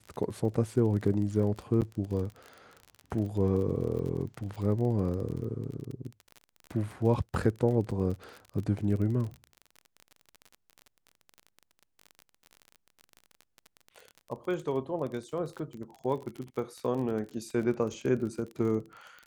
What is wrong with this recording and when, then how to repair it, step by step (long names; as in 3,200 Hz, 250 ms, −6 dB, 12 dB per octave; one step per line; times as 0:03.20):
surface crackle 33 per second −36 dBFS
0:01.81–0:01.82: drop-out 8.3 ms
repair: click removal
repair the gap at 0:01.81, 8.3 ms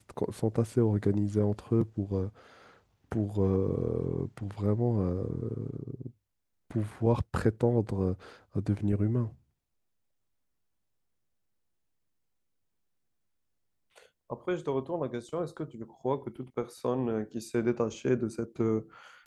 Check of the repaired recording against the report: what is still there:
none of them is left